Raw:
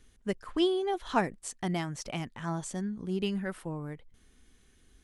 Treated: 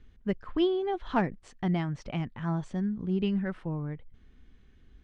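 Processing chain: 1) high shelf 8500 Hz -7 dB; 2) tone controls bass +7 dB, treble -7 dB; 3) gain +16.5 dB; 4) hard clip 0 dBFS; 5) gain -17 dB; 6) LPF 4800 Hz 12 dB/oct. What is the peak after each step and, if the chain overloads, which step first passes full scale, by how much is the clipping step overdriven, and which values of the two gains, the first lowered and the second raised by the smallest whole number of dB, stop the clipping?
-14.0, -12.5, +4.0, 0.0, -17.0, -17.0 dBFS; step 3, 4.0 dB; step 3 +12.5 dB, step 5 -13 dB

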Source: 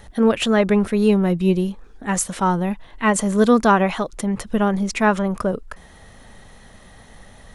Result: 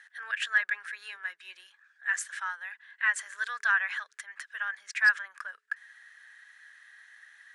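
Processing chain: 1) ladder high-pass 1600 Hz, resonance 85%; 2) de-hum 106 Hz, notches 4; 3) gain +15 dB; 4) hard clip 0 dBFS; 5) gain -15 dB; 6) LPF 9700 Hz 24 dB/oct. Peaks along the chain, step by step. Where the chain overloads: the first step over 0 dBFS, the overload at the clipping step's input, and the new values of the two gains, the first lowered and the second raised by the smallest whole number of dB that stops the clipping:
-10.0, -10.0, +5.0, 0.0, -15.0, -14.5 dBFS; step 3, 5.0 dB; step 3 +10 dB, step 5 -10 dB

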